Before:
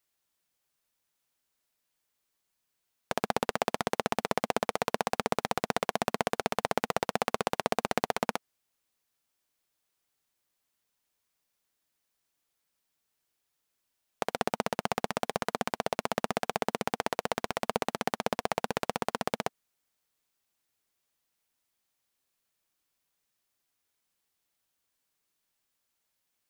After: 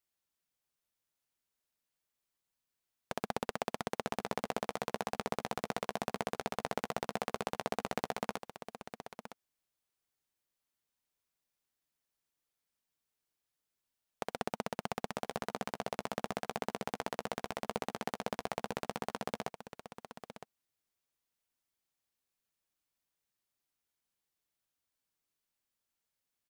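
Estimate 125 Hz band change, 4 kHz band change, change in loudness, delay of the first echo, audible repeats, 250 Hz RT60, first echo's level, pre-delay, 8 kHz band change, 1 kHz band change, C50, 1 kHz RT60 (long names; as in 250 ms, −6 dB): −5.0 dB, −7.5 dB, −7.5 dB, 962 ms, 1, no reverb audible, −11.0 dB, no reverb audible, −7.5 dB, −7.5 dB, no reverb audible, no reverb audible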